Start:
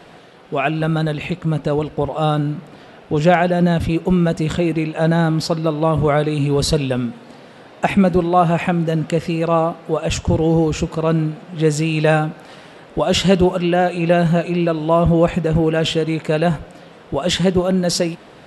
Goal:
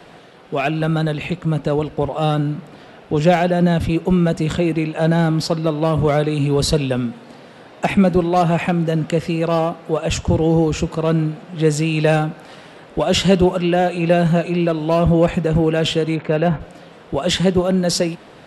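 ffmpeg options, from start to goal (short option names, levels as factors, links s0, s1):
-filter_complex "[0:a]asplit=3[s0][s1][s2];[s0]afade=t=out:st=16.15:d=0.02[s3];[s1]lowpass=2700,afade=t=in:st=16.15:d=0.02,afade=t=out:st=16.59:d=0.02[s4];[s2]afade=t=in:st=16.59:d=0.02[s5];[s3][s4][s5]amix=inputs=3:normalize=0,acrossover=split=190|950|1500[s6][s7][s8][s9];[s8]aeval=exprs='0.0376*(abs(mod(val(0)/0.0376+3,4)-2)-1)':c=same[s10];[s6][s7][s10][s9]amix=inputs=4:normalize=0"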